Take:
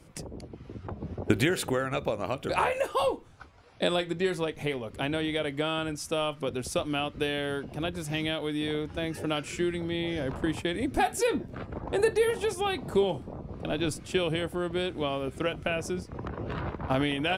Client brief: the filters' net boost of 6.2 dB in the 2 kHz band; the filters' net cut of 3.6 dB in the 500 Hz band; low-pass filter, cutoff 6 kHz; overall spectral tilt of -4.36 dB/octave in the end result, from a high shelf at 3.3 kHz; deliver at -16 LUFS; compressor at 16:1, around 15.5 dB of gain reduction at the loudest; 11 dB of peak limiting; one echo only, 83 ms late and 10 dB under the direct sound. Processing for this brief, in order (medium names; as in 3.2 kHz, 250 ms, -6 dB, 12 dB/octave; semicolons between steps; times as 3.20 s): low-pass 6 kHz; peaking EQ 500 Hz -5 dB; peaking EQ 2 kHz +6.5 dB; treble shelf 3.3 kHz +5 dB; compression 16:1, threshold -34 dBFS; peak limiter -29 dBFS; delay 83 ms -10 dB; trim +24.5 dB